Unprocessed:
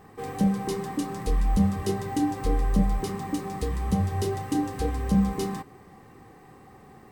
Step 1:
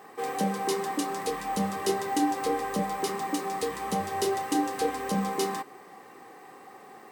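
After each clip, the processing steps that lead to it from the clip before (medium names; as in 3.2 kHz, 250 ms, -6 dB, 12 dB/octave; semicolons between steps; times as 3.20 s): high-pass 410 Hz 12 dB/octave; trim +5 dB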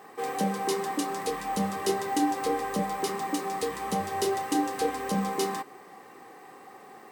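companded quantiser 8-bit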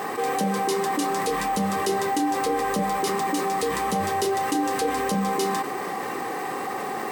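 level flattener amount 70%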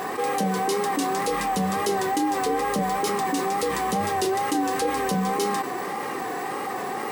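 wow and flutter 66 cents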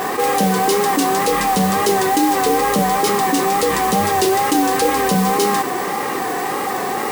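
modulation noise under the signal 13 dB; trim +8 dB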